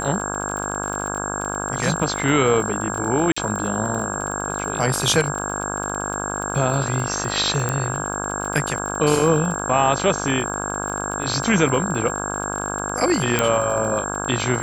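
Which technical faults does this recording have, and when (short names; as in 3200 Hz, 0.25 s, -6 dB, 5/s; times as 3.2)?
buzz 50 Hz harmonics 33 -28 dBFS
crackle 40/s -27 dBFS
tone 7500 Hz -29 dBFS
3.32–3.37 gap 45 ms
7.69 pop -9 dBFS
13.39 pop -3 dBFS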